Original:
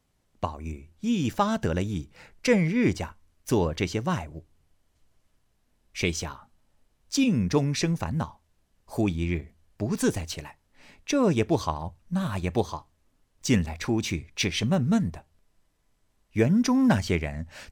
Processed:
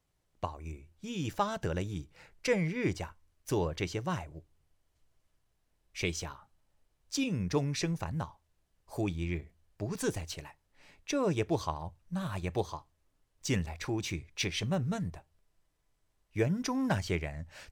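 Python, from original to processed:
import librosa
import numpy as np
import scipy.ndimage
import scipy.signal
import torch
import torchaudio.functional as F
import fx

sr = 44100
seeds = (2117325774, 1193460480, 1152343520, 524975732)

y = fx.peak_eq(x, sr, hz=230.0, db=-13.5, octaves=0.23)
y = y * 10.0 ** (-6.0 / 20.0)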